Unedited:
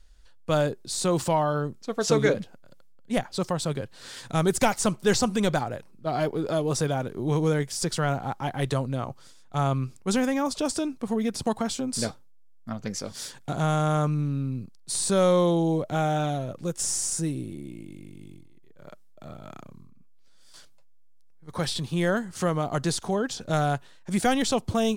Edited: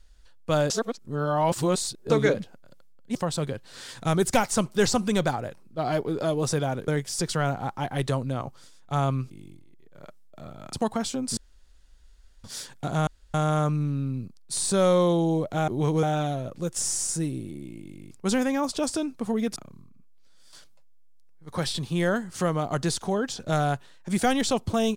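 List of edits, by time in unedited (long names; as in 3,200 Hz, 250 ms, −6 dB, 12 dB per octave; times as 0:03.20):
0:00.70–0:02.10: reverse
0:03.15–0:03.43: remove
0:07.16–0:07.51: move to 0:16.06
0:09.93–0:11.38: swap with 0:18.14–0:19.57
0:12.02–0:13.09: fill with room tone
0:13.72: splice in room tone 0.27 s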